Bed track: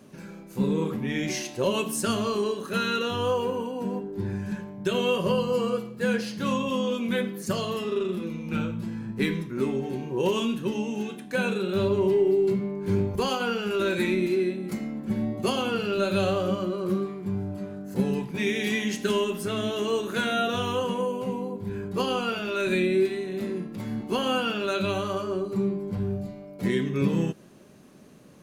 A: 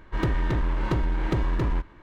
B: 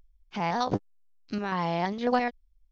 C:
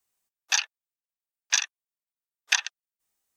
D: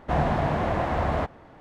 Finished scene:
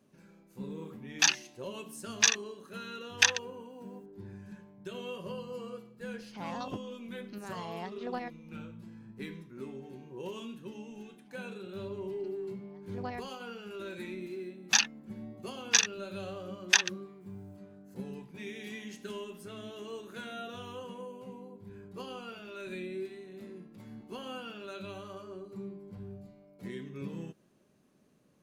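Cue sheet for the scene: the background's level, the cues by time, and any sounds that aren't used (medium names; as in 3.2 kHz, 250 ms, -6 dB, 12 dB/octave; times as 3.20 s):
bed track -16 dB
0.70 s: add C -0.5 dB
6.00 s: add B -12.5 dB
10.91 s: add B -13 dB + logarithmic tremolo 0.89 Hz, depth 29 dB
14.21 s: add C -0.5 dB
not used: A, D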